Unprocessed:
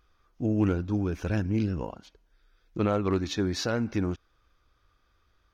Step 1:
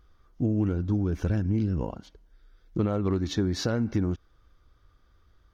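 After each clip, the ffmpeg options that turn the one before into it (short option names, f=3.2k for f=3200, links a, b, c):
-af "lowshelf=f=400:g=8.5,bandreject=f=2.5k:w=10,acompressor=threshold=-22dB:ratio=5"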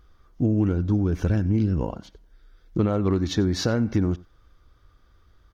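-af "aecho=1:1:91:0.0794,volume=4dB"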